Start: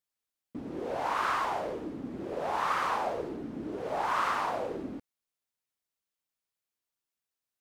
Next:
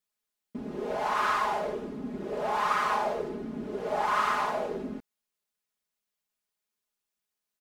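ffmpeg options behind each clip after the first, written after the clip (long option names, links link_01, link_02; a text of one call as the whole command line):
ffmpeg -i in.wav -af "aecho=1:1:4.8:0.9" out.wav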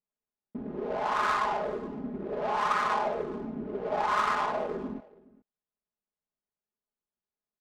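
ffmpeg -i in.wav -af "adynamicsmooth=sensitivity=4:basefreq=1100,aecho=1:1:419:0.0794" out.wav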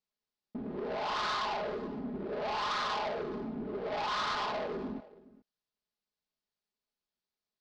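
ffmpeg -i in.wav -af "asoftclip=type=tanh:threshold=-31.5dB,lowpass=frequency=4600:width_type=q:width=2.4" out.wav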